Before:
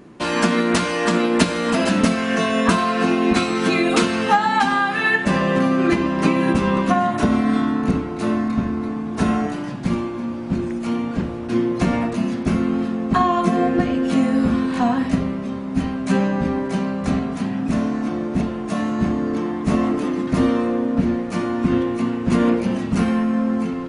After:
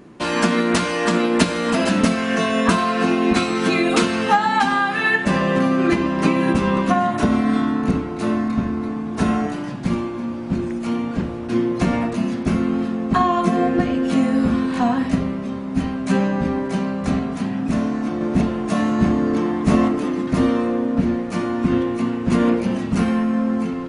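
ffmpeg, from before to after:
-filter_complex "[0:a]asplit=3[a][b][c];[a]atrim=end=18.212[d];[b]atrim=start=18.208:end=19.882,asetpts=PTS-STARTPTS,volume=3dB[e];[c]atrim=start=19.878[f];[d][e]acrossfade=d=0.004:c1=hsin:c2=hsin[g];[g][f]acrossfade=d=0.004:c1=hsin:c2=hsin"

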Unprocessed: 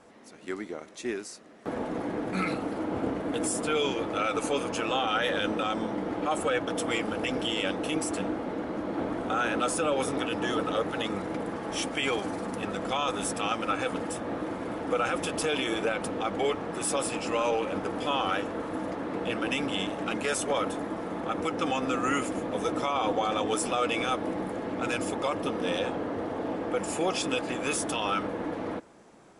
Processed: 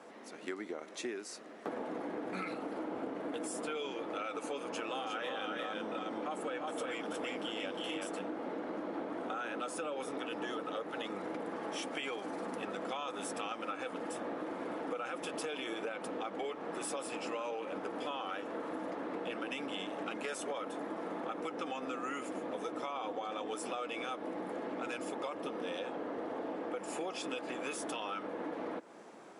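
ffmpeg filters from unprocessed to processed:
-filter_complex "[0:a]asettb=1/sr,asplit=3[a][b][c];[a]atrim=end=4.594[d];[b]atrim=start=4.59:end=8.19,asetpts=PTS-STARTPTS,afade=t=in:d=0.004:c=qsin,afade=t=out:st=3.596:d=0.004:c=qsin,aecho=1:1:327|358:0.376|0.708,atrim=end_sample=158760[e];[c]atrim=start=8.186[f];[d][e]acrossfade=d=0.004:c1=hsin:c2=qsin[g];[g][f]acrossfade=d=0.004:c1=qsin:c2=hsin,highpass=260,equalizer=f=9.6k:w=0.41:g=-5,acompressor=threshold=-40dB:ratio=6,volume=3dB"

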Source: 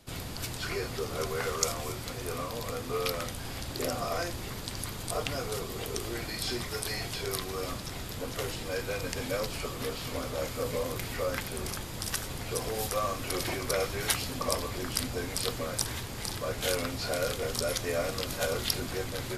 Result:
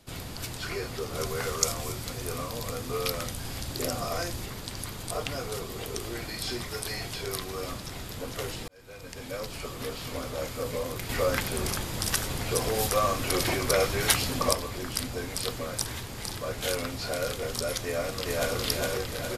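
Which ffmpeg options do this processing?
-filter_complex "[0:a]asettb=1/sr,asplit=3[a][b][c];[a]atrim=end=1.144[d];[b]atrim=start=1.14:end=4.46,asetpts=PTS-STARTPTS,afade=t=in:d=0.004:c=qsin,afade=t=out:st=3.316:d=0.004:c=qsin,bass=f=250:g=3,treble=f=4k:g=4[e];[c]atrim=start=4.456[f];[d][e]acrossfade=d=0.004:c1=hsin:c2=qsin[g];[g][f]acrossfade=d=0.004:c1=qsin:c2=hsin,asettb=1/sr,asplit=3[h][i][j];[h]atrim=end=11.094[k];[i]atrim=start=11.09:end=14.53,asetpts=PTS-STARTPTS,afade=t=in:d=0.004:c=qsin,afade=t=out:st=3.436:d=0.004:c=qsin,acontrast=38[l];[j]atrim=start=14.526[m];[k][l]acrossfade=d=0.004:c1=hsin:c2=qsin[n];[n][m]acrossfade=d=0.004:c1=qsin:c2=hsin,asplit=2[o][p];[p]afade=t=in:st=17.84:d=0.01,afade=t=out:st=18.56:d=0.01,aecho=0:1:410|820|1230|1640|2050|2460|2870:0.944061|0.47203|0.236015|0.118008|0.0590038|0.0295019|0.014751[q];[o][q]amix=inputs=2:normalize=0,asplit=2[r][s];[r]atrim=end=8.68,asetpts=PTS-STARTPTS,afade=t=out:st=8.676:d=0.004:c=hsin[t];[s]atrim=start=8.68,asetpts=PTS-STARTPTS,afade=t=in:d=1.54:c=qsin[u];[t][u]concat=n=2:v=0:a=1"

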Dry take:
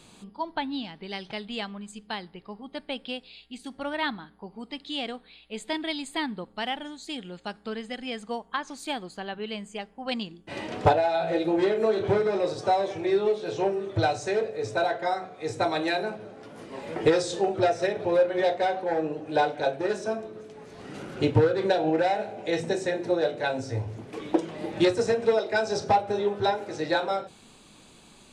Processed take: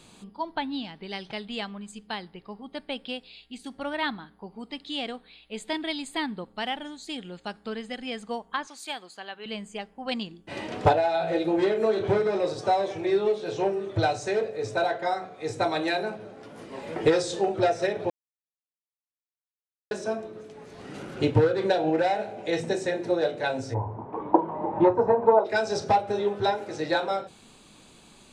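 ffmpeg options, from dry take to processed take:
-filter_complex "[0:a]asettb=1/sr,asplit=3[a][b][c];[a]atrim=end=8.674[d];[b]atrim=start=8.67:end=9.46,asetpts=PTS-STARTPTS,afade=t=in:d=0.004:c=qsin,afade=t=out:st=0.786:d=0.004:c=qsin,highpass=f=970:p=1[e];[c]atrim=start=9.456[f];[d][e]acrossfade=d=0.004:c1=hsin:c2=qsin[g];[g][f]acrossfade=d=0.004:c1=qsin:c2=hsin,asplit=3[h][i][j];[h]afade=t=out:st=23.73:d=0.02[k];[i]lowpass=f=950:t=q:w=8.7,afade=t=in:st=23.73:d=0.02,afade=t=out:st=25.44:d=0.02[l];[j]afade=t=in:st=25.44:d=0.02[m];[k][l][m]amix=inputs=3:normalize=0,asplit=3[n][o][p];[n]atrim=end=18.1,asetpts=PTS-STARTPTS,afade=t=out:st=18.096:d=0.004:c=hsin[q];[o]atrim=start=18.1:end=19.91,asetpts=PTS-STARTPTS,volume=0[r];[p]atrim=start=19.91,asetpts=PTS-STARTPTS,afade=t=in:d=0.004:c=hsin[s];[q][r][s]concat=n=3:v=0:a=1"

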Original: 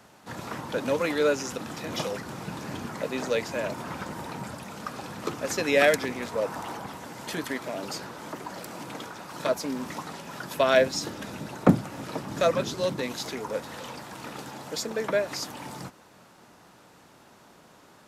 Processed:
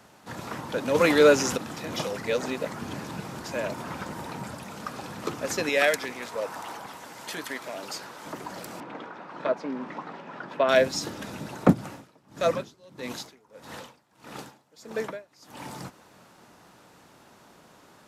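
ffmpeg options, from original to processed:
-filter_complex "[0:a]asplit=3[a][b][c];[a]afade=t=out:st=0.94:d=0.02[d];[b]acontrast=82,afade=t=in:st=0.94:d=0.02,afade=t=out:st=1.56:d=0.02[e];[c]afade=t=in:st=1.56:d=0.02[f];[d][e][f]amix=inputs=3:normalize=0,asettb=1/sr,asplit=3[g][h][i];[g]atrim=end=5.694[j];[h]atrim=start=5.69:end=8.26,asetpts=PTS-STARTPTS,afade=t=in:d=0.004:c=qsin,afade=t=out:st=2.566:d=0.004:c=qsin,lowshelf=f=360:g=-11[k];[i]atrim=start=8.256[l];[j][k]acrossfade=d=0.004:c1=hsin:c2=qsin[m];[m][l]acrossfade=d=0.004:c1=qsin:c2=hsin,asettb=1/sr,asplit=3[n][o][p];[n]atrim=end=8.804[q];[o]atrim=start=8.8:end=10.69,asetpts=PTS-STARTPTS,afade=t=in:d=0.004:c=qsin,afade=t=out:st=1.886:d=0.004:c=qsin,highpass=200,lowpass=2.2k[r];[p]atrim=start=10.686[s];[q][r]acrossfade=d=0.004:c1=hsin:c2=qsin[t];[t][s]acrossfade=d=0.004:c1=qsin:c2=hsin,asplit=3[u][v][w];[u]afade=t=out:st=11.72:d=0.02[x];[v]aeval=exprs='val(0)*pow(10,-27*(0.5-0.5*cos(2*PI*1.6*n/s))/20)':c=same,afade=t=in:st=11.72:d=0.02,afade=t=out:st=15.59:d=0.02[y];[w]afade=t=in:st=15.59:d=0.02[z];[x][y][z]amix=inputs=3:normalize=0,asplit=3[aa][ab][ac];[aa]atrim=end=2.242[ad];[ab]atrim=start=2.238:end=3.442,asetpts=PTS-STARTPTS,areverse[ae];[ac]atrim=start=3.438[af];[ad][ae]acrossfade=d=0.004:c1=hsin:c2=hsin[ag];[ag][af]acrossfade=d=0.004:c1=hsin:c2=hsin"

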